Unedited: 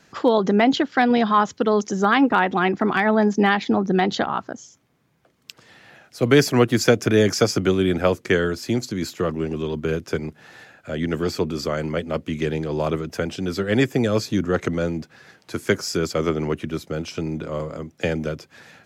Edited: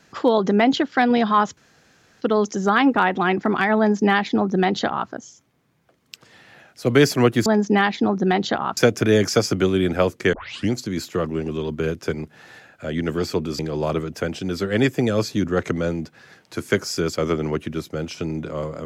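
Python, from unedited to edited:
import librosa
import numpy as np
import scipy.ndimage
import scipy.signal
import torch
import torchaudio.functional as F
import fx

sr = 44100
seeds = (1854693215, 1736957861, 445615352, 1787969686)

y = fx.edit(x, sr, fx.insert_room_tone(at_s=1.57, length_s=0.64),
    fx.duplicate(start_s=3.14, length_s=1.31, to_s=6.82),
    fx.tape_start(start_s=8.38, length_s=0.38),
    fx.cut(start_s=11.64, length_s=0.92), tone=tone)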